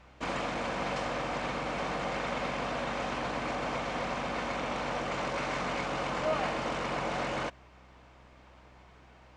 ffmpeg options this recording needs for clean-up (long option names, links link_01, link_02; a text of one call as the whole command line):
ffmpeg -i in.wav -af "bandreject=frequency=63.5:width_type=h:width=4,bandreject=frequency=127:width_type=h:width=4,bandreject=frequency=190.5:width_type=h:width=4,bandreject=frequency=254:width_type=h:width=4,bandreject=frequency=317.5:width_type=h:width=4" out.wav